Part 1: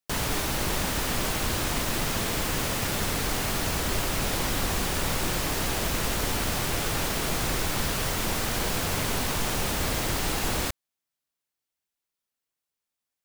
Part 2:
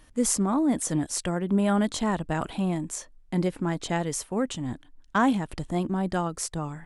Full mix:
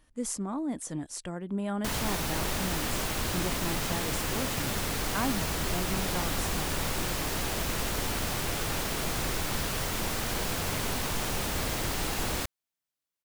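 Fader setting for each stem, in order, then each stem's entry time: -3.5, -9.0 dB; 1.75, 0.00 s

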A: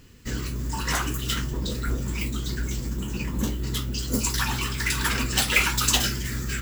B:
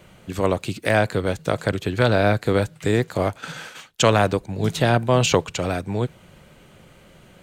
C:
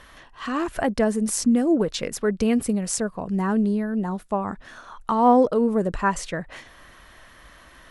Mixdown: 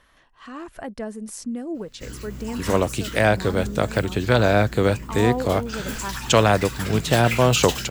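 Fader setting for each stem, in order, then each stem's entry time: -7.0, +0.5, -10.5 dB; 1.75, 2.30, 0.00 s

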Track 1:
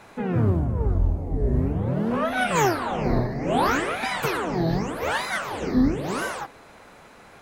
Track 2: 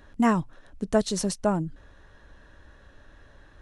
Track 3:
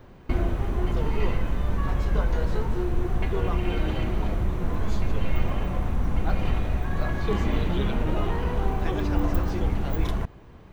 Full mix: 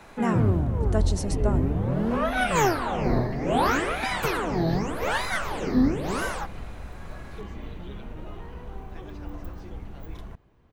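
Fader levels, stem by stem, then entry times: -1.0, -5.0, -13.5 dB; 0.00, 0.00, 0.10 s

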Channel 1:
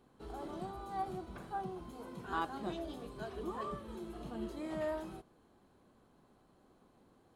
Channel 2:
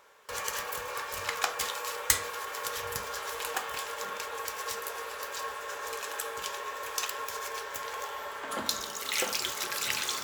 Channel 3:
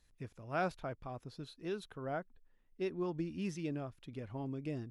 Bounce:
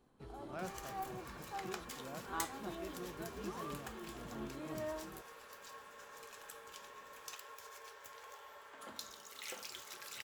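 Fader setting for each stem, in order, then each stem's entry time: -5.0, -16.5, -11.5 dB; 0.00, 0.30, 0.00 s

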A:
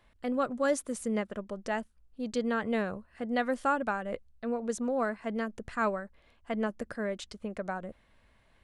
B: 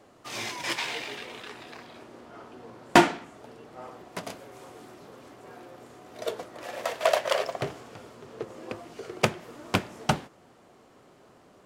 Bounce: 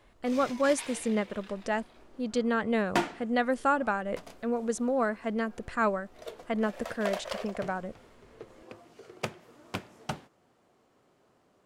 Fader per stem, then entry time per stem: +2.5, -10.5 dB; 0.00, 0.00 s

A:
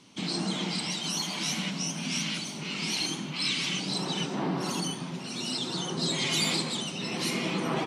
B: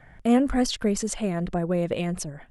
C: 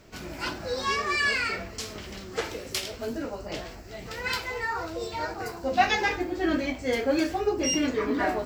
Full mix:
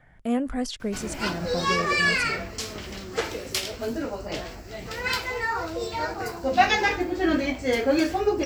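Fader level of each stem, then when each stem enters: off, -5.5 dB, +3.0 dB; off, 0.00 s, 0.80 s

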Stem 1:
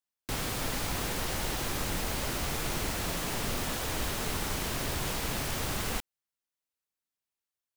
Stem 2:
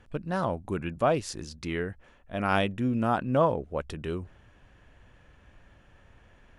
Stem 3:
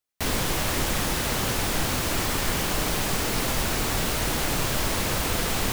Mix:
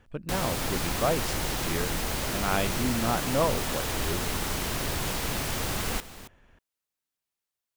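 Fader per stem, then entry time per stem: +2.5, -2.5, -19.5 dB; 0.00, 0.00, 0.55 s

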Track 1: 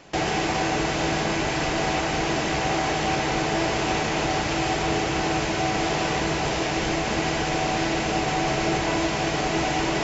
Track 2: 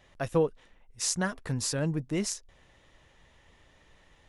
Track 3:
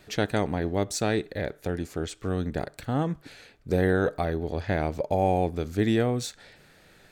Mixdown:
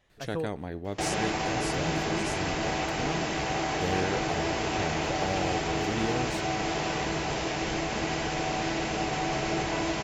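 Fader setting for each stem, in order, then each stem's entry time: -5.5, -8.0, -8.5 dB; 0.85, 0.00, 0.10 s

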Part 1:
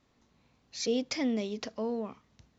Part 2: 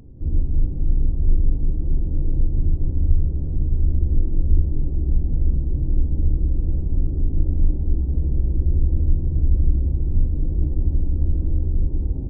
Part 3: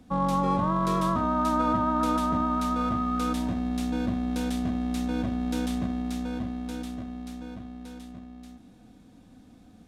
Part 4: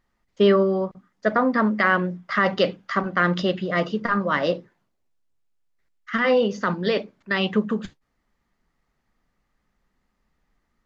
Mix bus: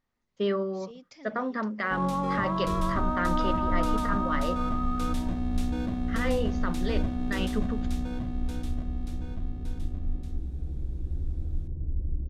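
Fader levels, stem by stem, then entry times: -18.0, -13.0, -3.5, -10.5 dB; 0.00, 2.45, 1.80, 0.00 s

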